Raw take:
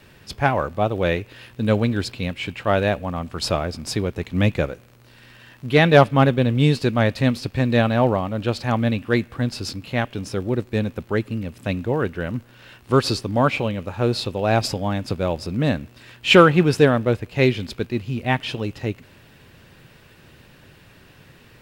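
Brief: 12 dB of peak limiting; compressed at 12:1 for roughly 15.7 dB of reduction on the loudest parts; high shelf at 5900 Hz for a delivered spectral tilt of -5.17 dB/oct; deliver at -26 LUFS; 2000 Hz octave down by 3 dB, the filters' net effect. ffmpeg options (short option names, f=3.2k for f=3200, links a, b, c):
-af "equalizer=f=2k:t=o:g=-5,highshelf=f=5.9k:g=8,acompressor=threshold=-23dB:ratio=12,volume=9dB,alimiter=limit=-15.5dB:level=0:latency=1"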